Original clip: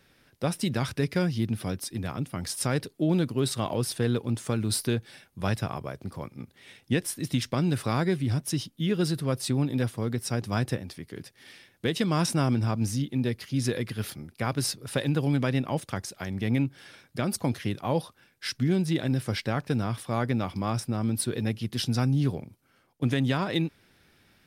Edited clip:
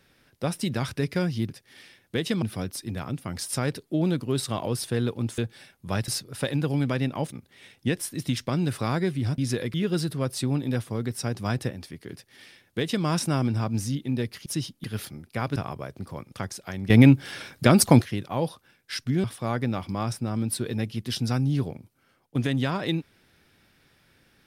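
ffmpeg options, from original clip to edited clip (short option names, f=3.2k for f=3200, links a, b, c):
-filter_complex "[0:a]asplit=15[a][b][c][d][e][f][g][h][i][j][k][l][m][n][o];[a]atrim=end=1.502[p];[b]atrim=start=11.198:end=12.122[q];[c]atrim=start=1.498:end=4.462[r];[d]atrim=start=4.908:end=5.612[s];[e]atrim=start=14.608:end=15.852[t];[f]atrim=start=6.368:end=8.432[u];[g]atrim=start=13.528:end=13.892[v];[h]atrim=start=8.808:end=13.532[w];[i]atrim=start=8.428:end=8.812[x];[j]atrim=start=13.888:end=14.612[y];[k]atrim=start=5.608:end=6.372[z];[l]atrim=start=15.848:end=16.432[aa];[m]atrim=start=16.428:end=17.552,asetpts=PTS-STARTPTS,volume=11.5dB[ab];[n]atrim=start=17.548:end=18.772[ac];[o]atrim=start=19.908[ad];[p][q]acrossfade=d=0.004:c1=hsin:c2=hsin[ae];[ae][r]acrossfade=d=0.004:c1=hsin:c2=hsin[af];[af][s]acrossfade=d=0.004:c1=hsin:c2=hsin[ag];[ag][t]acrossfade=d=0.004:c1=hsin:c2=hsin[ah];[ah][u]acrossfade=d=0.004:c1=hsin:c2=hsin[ai];[ai][v]acrossfade=d=0.004:c1=hsin:c2=hsin[aj];[aj][w]acrossfade=d=0.004:c1=hsin:c2=hsin[ak];[ak][x]acrossfade=d=0.004:c1=hsin:c2=hsin[al];[al][y]acrossfade=d=0.004:c1=hsin:c2=hsin[am];[am][z]acrossfade=d=0.004:c1=hsin:c2=hsin[an];[an][aa]acrossfade=d=0.004:c1=hsin:c2=hsin[ao];[ao][ab]acrossfade=d=0.004:c1=hsin:c2=hsin[ap];[ap][ac]acrossfade=d=0.004:c1=hsin:c2=hsin[aq];[aq][ad]acrossfade=d=0.004:c1=hsin:c2=hsin"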